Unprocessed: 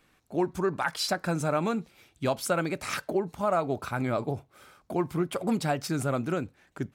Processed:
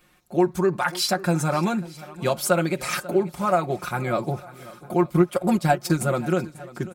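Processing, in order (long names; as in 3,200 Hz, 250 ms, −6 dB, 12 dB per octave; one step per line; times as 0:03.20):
high-shelf EQ 11,000 Hz +7.5 dB
comb filter 5.6 ms, depth 74%
0:05.02–0:06.01: transient designer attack +5 dB, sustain −10 dB
on a send: feedback echo with a long and a short gap by turns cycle 903 ms, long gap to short 1.5 to 1, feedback 31%, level −19 dB
on the sum: level +3 dB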